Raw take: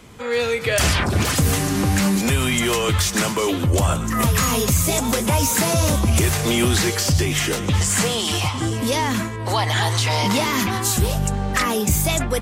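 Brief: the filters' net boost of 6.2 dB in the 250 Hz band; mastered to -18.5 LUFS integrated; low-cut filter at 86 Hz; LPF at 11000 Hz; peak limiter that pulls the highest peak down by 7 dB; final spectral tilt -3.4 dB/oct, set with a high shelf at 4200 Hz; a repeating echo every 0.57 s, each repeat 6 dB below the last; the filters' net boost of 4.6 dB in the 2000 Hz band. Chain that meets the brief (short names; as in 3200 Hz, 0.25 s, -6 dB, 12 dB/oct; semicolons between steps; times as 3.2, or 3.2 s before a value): HPF 86 Hz; LPF 11000 Hz; bell 250 Hz +8 dB; bell 2000 Hz +3.5 dB; high shelf 4200 Hz +8.5 dB; limiter -7.5 dBFS; feedback echo 0.57 s, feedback 50%, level -6 dB; gain -3 dB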